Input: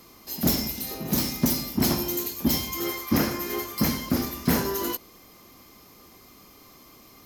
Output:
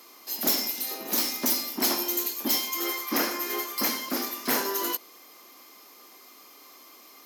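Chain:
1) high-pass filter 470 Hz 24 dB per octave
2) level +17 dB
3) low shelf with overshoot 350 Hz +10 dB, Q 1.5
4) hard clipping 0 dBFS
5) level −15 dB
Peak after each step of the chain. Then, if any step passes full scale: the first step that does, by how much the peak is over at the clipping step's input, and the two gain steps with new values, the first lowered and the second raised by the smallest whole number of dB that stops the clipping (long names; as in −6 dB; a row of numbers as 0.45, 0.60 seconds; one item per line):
−11.0, +6.0, +5.5, 0.0, −15.0 dBFS
step 2, 5.5 dB
step 2 +11 dB, step 5 −9 dB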